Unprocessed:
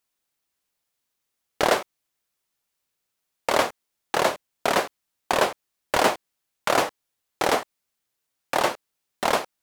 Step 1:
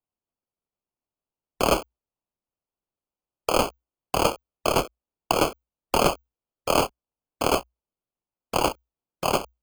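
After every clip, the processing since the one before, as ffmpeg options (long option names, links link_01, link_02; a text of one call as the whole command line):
ffmpeg -i in.wav -af "afwtdn=0.0398,acrusher=samples=23:mix=1:aa=0.000001,afreqshift=-60" out.wav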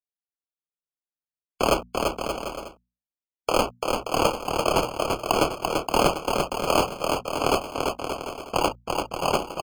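ffmpeg -i in.wav -af "afftdn=noise_reduction=18:noise_floor=-37,bandreject=frequency=60:width_type=h:width=6,bandreject=frequency=120:width_type=h:width=6,bandreject=frequency=180:width_type=h:width=6,bandreject=frequency=240:width_type=h:width=6,aecho=1:1:340|578|744.6|861.2|942.9:0.631|0.398|0.251|0.158|0.1" out.wav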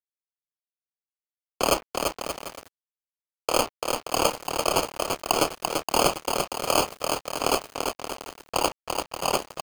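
ffmpeg -i in.wav -af "bass=frequency=250:gain=-4,treble=frequency=4000:gain=7,bandreject=frequency=208.2:width_type=h:width=4,bandreject=frequency=416.4:width_type=h:width=4,bandreject=frequency=624.6:width_type=h:width=4,bandreject=frequency=832.8:width_type=h:width=4,bandreject=frequency=1041:width_type=h:width=4,bandreject=frequency=1249.2:width_type=h:width=4,bandreject=frequency=1457.4:width_type=h:width=4,bandreject=frequency=1665.6:width_type=h:width=4,bandreject=frequency=1873.8:width_type=h:width=4,bandreject=frequency=2082:width_type=h:width=4,bandreject=frequency=2290.2:width_type=h:width=4,bandreject=frequency=2498.4:width_type=h:width=4,aeval=exprs='sgn(val(0))*max(abs(val(0))-0.0237,0)':channel_layout=same" out.wav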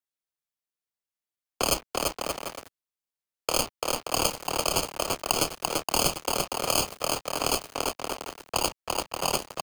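ffmpeg -i in.wav -filter_complex "[0:a]acrossover=split=200|3000[link_01][link_02][link_03];[link_02]acompressor=threshold=-27dB:ratio=6[link_04];[link_01][link_04][link_03]amix=inputs=3:normalize=0,volume=1.5dB" out.wav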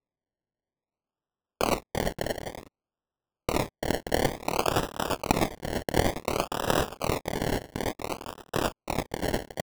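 ffmpeg -i in.wav -af "acrusher=samples=28:mix=1:aa=0.000001:lfo=1:lforange=16.8:lforate=0.56" out.wav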